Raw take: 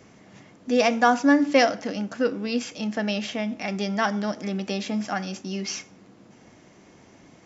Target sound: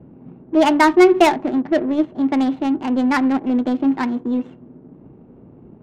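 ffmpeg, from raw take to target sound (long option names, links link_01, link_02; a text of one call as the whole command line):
ffmpeg -i in.wav -af "bass=frequency=250:gain=10,treble=frequency=4000:gain=-13,asetrate=56448,aresample=44100,adynamicsmooth=sensitivity=1.5:basefreq=600,volume=4.5dB" out.wav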